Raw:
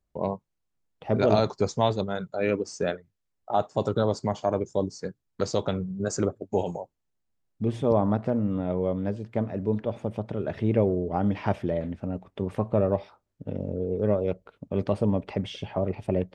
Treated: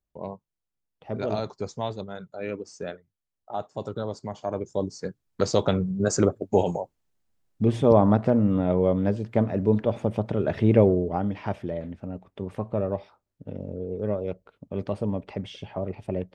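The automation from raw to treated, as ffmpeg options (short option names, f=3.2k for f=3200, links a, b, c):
-af "volume=5dB,afade=t=in:st=4.32:d=1.4:silence=0.251189,afade=t=out:st=10.87:d=0.42:silence=0.375837"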